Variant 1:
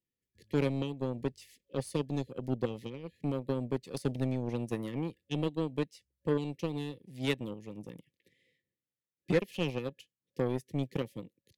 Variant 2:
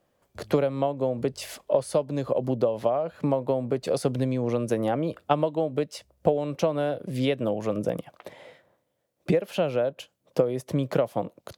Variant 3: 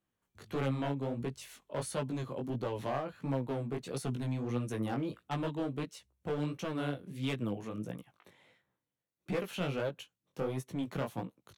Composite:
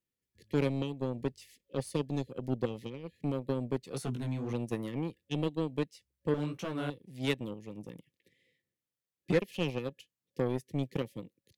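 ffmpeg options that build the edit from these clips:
-filter_complex "[2:a]asplit=2[a][b];[0:a]asplit=3[c][d][e];[c]atrim=end=3.932[f];[a]atrim=start=3.928:end=4.532[g];[d]atrim=start=4.528:end=6.342[h];[b]atrim=start=6.338:end=6.902[i];[e]atrim=start=6.898[j];[f][g]acrossfade=d=0.004:c1=hsin:c2=hsin[k];[k][h]acrossfade=d=0.004:c1=hsin:c2=hsin[l];[l][i]acrossfade=d=0.004:c1=hsin:c2=hsin[m];[m][j]acrossfade=d=0.004:c1=hsin:c2=hsin"

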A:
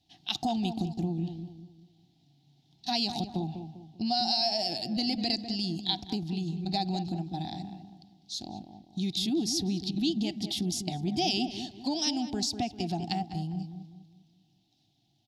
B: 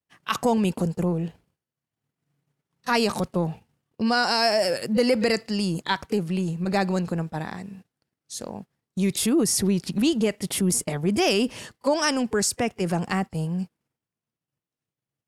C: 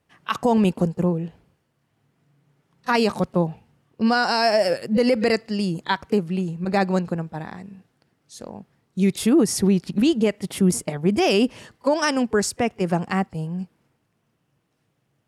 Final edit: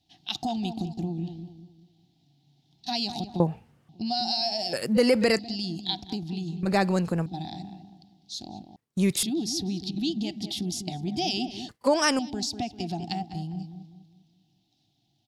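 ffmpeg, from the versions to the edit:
-filter_complex "[1:a]asplit=4[a][b][c][d];[0:a]asplit=6[e][f][g][h][i][j];[e]atrim=end=3.402[k];[2:a]atrim=start=3.398:end=3.892[l];[f]atrim=start=3.888:end=4.732[m];[a]atrim=start=4.728:end=5.392[n];[g]atrim=start=5.388:end=6.632[o];[b]atrim=start=6.628:end=7.262[p];[h]atrim=start=7.258:end=8.762[q];[c]atrim=start=8.758:end=9.232[r];[i]atrim=start=9.228:end=11.692[s];[d]atrim=start=11.688:end=12.192[t];[j]atrim=start=12.188[u];[k][l]acrossfade=d=0.004:c1=hsin:c2=hsin[v];[v][m]acrossfade=d=0.004:c1=hsin:c2=hsin[w];[w][n]acrossfade=d=0.004:c1=hsin:c2=hsin[x];[x][o]acrossfade=d=0.004:c1=hsin:c2=hsin[y];[y][p]acrossfade=d=0.004:c1=hsin:c2=hsin[z];[z][q]acrossfade=d=0.004:c1=hsin:c2=hsin[aa];[aa][r]acrossfade=d=0.004:c1=hsin:c2=hsin[ab];[ab][s]acrossfade=d=0.004:c1=hsin:c2=hsin[ac];[ac][t]acrossfade=d=0.004:c1=hsin:c2=hsin[ad];[ad][u]acrossfade=d=0.004:c1=hsin:c2=hsin"

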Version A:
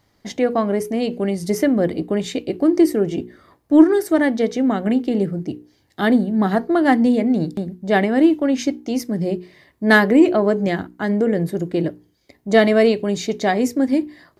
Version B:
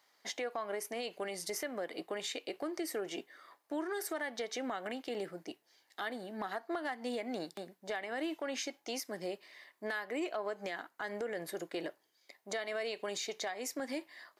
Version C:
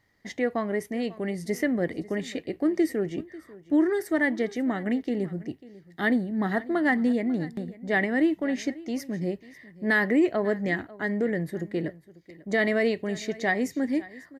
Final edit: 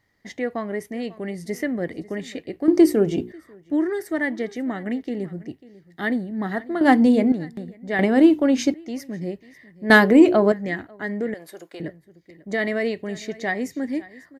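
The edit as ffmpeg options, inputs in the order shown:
-filter_complex "[0:a]asplit=4[a][b][c][d];[2:a]asplit=6[e][f][g][h][i][j];[e]atrim=end=2.682[k];[a]atrim=start=2.678:end=3.322[l];[f]atrim=start=3.318:end=6.812[m];[b]atrim=start=6.808:end=7.322[n];[g]atrim=start=7.318:end=7.992[o];[c]atrim=start=7.988:end=8.742[p];[h]atrim=start=8.738:end=9.902[q];[d]atrim=start=9.898:end=10.522[r];[i]atrim=start=10.518:end=11.342[s];[1:a]atrim=start=11.338:end=11.802[t];[j]atrim=start=11.798[u];[k][l]acrossfade=d=0.004:c1=hsin:c2=hsin[v];[v][m]acrossfade=d=0.004:c1=hsin:c2=hsin[w];[w][n]acrossfade=d=0.004:c1=hsin:c2=hsin[x];[x][o]acrossfade=d=0.004:c1=hsin:c2=hsin[y];[y][p]acrossfade=d=0.004:c1=hsin:c2=hsin[z];[z][q]acrossfade=d=0.004:c1=hsin:c2=hsin[aa];[aa][r]acrossfade=d=0.004:c1=hsin:c2=hsin[ab];[ab][s]acrossfade=d=0.004:c1=hsin:c2=hsin[ac];[ac][t]acrossfade=d=0.004:c1=hsin:c2=hsin[ad];[ad][u]acrossfade=d=0.004:c1=hsin:c2=hsin"

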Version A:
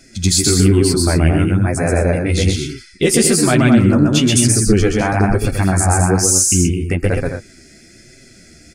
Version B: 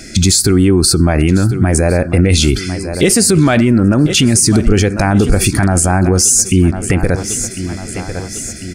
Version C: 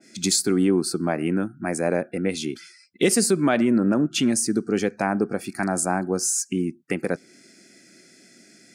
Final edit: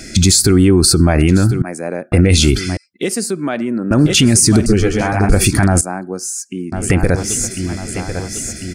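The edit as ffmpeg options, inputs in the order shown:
-filter_complex "[2:a]asplit=3[a][b][c];[1:a]asplit=5[d][e][f][g][h];[d]atrim=end=1.622[i];[a]atrim=start=1.618:end=2.122[j];[e]atrim=start=2.118:end=2.772[k];[b]atrim=start=2.768:end=3.912[l];[f]atrim=start=3.908:end=4.662[m];[0:a]atrim=start=4.658:end=5.292[n];[g]atrim=start=5.288:end=5.812[o];[c]atrim=start=5.808:end=6.722[p];[h]atrim=start=6.718[q];[i][j]acrossfade=d=0.004:c1=hsin:c2=hsin[r];[r][k]acrossfade=d=0.004:c1=hsin:c2=hsin[s];[s][l]acrossfade=d=0.004:c1=hsin:c2=hsin[t];[t][m]acrossfade=d=0.004:c1=hsin:c2=hsin[u];[u][n]acrossfade=d=0.004:c1=hsin:c2=hsin[v];[v][o]acrossfade=d=0.004:c1=hsin:c2=hsin[w];[w][p]acrossfade=d=0.004:c1=hsin:c2=hsin[x];[x][q]acrossfade=d=0.004:c1=hsin:c2=hsin"

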